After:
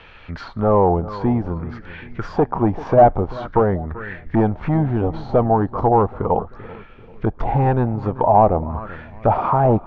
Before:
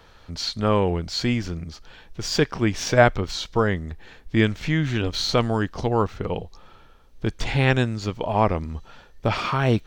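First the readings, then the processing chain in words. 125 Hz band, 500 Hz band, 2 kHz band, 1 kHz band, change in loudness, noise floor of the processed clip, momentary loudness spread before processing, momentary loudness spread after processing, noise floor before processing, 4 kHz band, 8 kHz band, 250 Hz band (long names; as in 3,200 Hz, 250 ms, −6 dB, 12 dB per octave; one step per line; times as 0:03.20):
+3.0 dB, +6.0 dB, −7.5 dB, +9.0 dB, +4.5 dB, −42 dBFS, 13 LU, 18 LU, −51 dBFS, below −15 dB, below −25 dB, +4.0 dB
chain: hard clipping −17 dBFS, distortion −9 dB
feedback echo with a low-pass in the loop 389 ms, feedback 46%, low-pass 1,100 Hz, level −15.5 dB
envelope-controlled low-pass 790–2,700 Hz down, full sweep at −22 dBFS
level +4.5 dB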